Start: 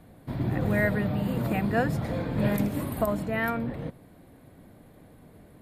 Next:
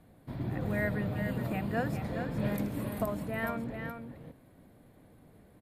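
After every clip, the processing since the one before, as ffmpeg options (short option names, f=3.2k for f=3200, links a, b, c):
-af "aecho=1:1:417:0.447,volume=-7dB"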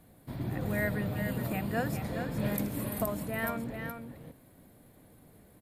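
-af "highshelf=f=5.5k:g=11.5"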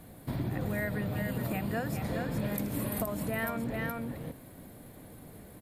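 -af "acompressor=threshold=-38dB:ratio=6,volume=8dB"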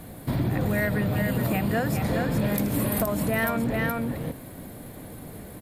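-af "aeval=exprs='0.141*sin(PI/2*1.78*val(0)/0.141)':c=same"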